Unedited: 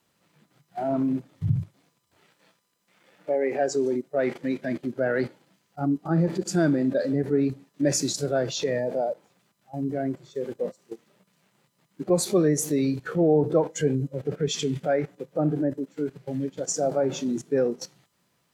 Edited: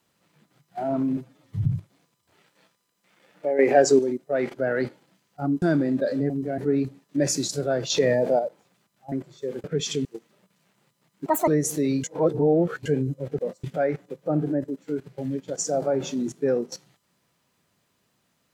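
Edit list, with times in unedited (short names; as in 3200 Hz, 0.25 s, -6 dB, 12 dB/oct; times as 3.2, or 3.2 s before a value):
1.17–1.49 stretch 1.5×
3.43–3.83 gain +8 dB
4.38–4.93 cut
6.01–6.55 cut
8.55–9.04 gain +5.5 dB
9.77–10.05 move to 7.23
10.57–10.82 swap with 14.32–14.73
12.03–12.41 speed 176%
12.97–13.79 reverse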